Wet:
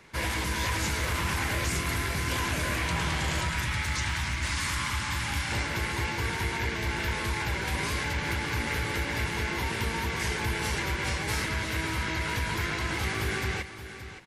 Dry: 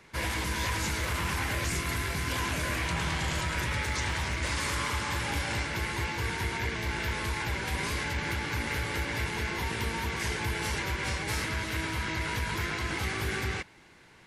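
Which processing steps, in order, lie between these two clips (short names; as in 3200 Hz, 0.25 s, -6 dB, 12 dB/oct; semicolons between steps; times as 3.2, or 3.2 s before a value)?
3.49–5.52 bell 480 Hz -14 dB 0.92 oct; echo 0.573 s -12 dB; gain +1.5 dB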